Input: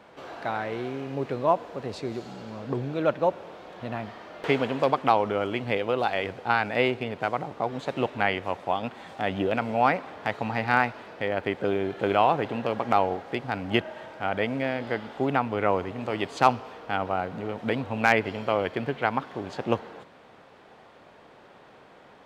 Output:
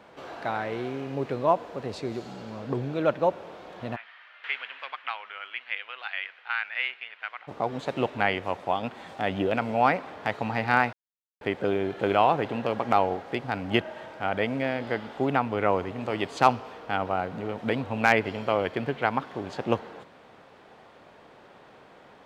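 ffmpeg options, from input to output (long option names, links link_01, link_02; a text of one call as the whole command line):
ffmpeg -i in.wav -filter_complex "[0:a]asplit=3[link_01][link_02][link_03];[link_01]afade=type=out:start_time=3.95:duration=0.02[link_04];[link_02]asuperpass=centerf=2200:order=4:qfactor=1.2,afade=type=in:start_time=3.95:duration=0.02,afade=type=out:start_time=7.47:duration=0.02[link_05];[link_03]afade=type=in:start_time=7.47:duration=0.02[link_06];[link_04][link_05][link_06]amix=inputs=3:normalize=0,asplit=3[link_07][link_08][link_09];[link_07]atrim=end=10.93,asetpts=PTS-STARTPTS,afade=type=out:start_time=10.926:duration=0.004:curve=hsin[link_10];[link_08]atrim=start=10.93:end=11.41,asetpts=PTS-STARTPTS,volume=0[link_11];[link_09]atrim=start=11.41,asetpts=PTS-STARTPTS,afade=type=in:duration=0.004:curve=hsin[link_12];[link_10][link_11][link_12]concat=n=3:v=0:a=1" out.wav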